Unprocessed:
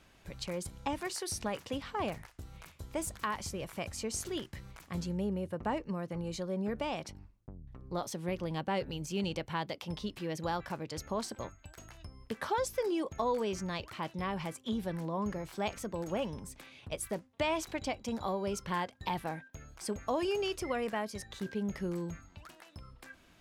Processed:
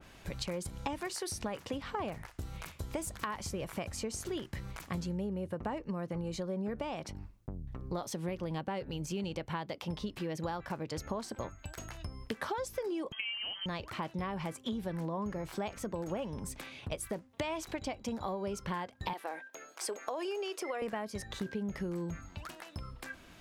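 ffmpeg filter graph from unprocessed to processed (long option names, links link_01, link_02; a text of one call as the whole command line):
ffmpeg -i in.wav -filter_complex "[0:a]asettb=1/sr,asplit=3[link_01][link_02][link_03];[link_01]atrim=end=13.124[link_04];[link_02]atrim=start=13.12:end=13.66,asetpts=PTS-STARTPTS,afade=type=in:duration=0.004:curve=qsin,afade=type=out:start_time=0.536:duration=0.004:curve=qsin,acrusher=bits=4:mode=log:mix=0:aa=0.000001,lowpass=frequency=2800:width_type=q:width=0.5098,lowpass=frequency=2800:width_type=q:width=0.6013,lowpass=frequency=2800:width_type=q:width=0.9,lowpass=frequency=2800:width_type=q:width=2.563,afreqshift=-3300[link_05];[link_03]atrim=start=13.656[link_06];[link_04][link_05]acrossfade=duration=0.004:curve1=hsin:curve2=qsin[link_07];[link_07][link_06]acrossfade=duration=0.004:curve1=qsin:curve2=hsin,asettb=1/sr,asplit=3[link_08][link_09][link_10];[link_08]atrim=end=19.134[link_11];[link_09]atrim=start=19.13:end=20.82,asetpts=PTS-STARTPTS,afade=type=in:duration=0.004:curve=qsin,afade=type=out:start_time=1.686:duration=0.004:curve=qsin,highpass=frequency=360:width=0.5412,highpass=frequency=360:width=1.3066,acompressor=threshold=-36dB:ratio=2:attack=3.2:release=140:knee=1:detection=peak[link_12];[link_10]atrim=start=20.816[link_13];[link_11][link_12]acrossfade=duration=0.004:curve1=hsin:curve2=qsin[link_14];[link_14][link_13]acrossfade=duration=0.004:curve1=qsin:curve2=hsin,acompressor=threshold=-41dB:ratio=6,adynamicequalizer=threshold=0.00112:dfrequency=2200:dqfactor=0.7:tfrequency=2200:tqfactor=0.7:attack=5:release=100:ratio=0.375:range=2:mode=cutabove:tftype=highshelf,volume=7dB" out.wav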